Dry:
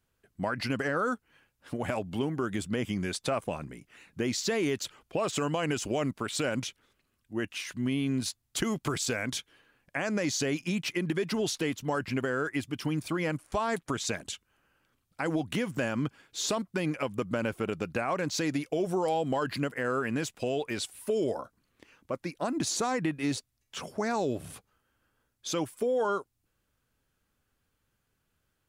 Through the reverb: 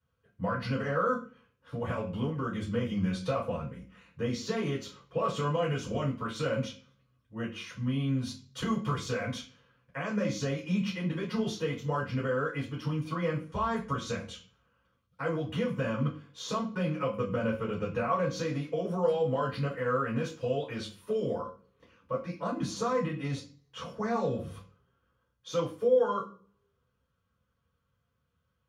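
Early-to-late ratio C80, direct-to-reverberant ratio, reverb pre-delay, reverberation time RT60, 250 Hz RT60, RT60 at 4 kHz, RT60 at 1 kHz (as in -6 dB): 14.5 dB, -7.5 dB, 3 ms, 0.40 s, 0.60 s, 0.40 s, 0.35 s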